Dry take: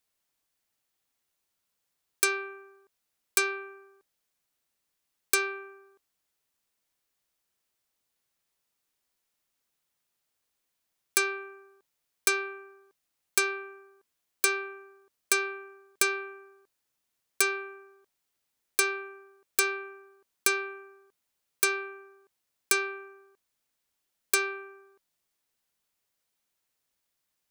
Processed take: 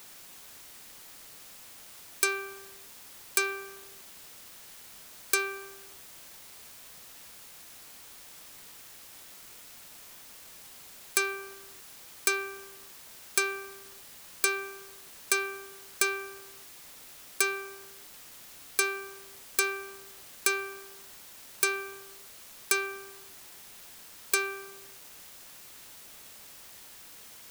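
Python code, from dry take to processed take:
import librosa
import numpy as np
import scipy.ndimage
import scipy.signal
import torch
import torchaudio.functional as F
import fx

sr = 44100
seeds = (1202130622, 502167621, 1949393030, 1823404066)

y = fx.quant_dither(x, sr, seeds[0], bits=8, dither='triangular')
y = y * 10.0 ** (-1.5 / 20.0)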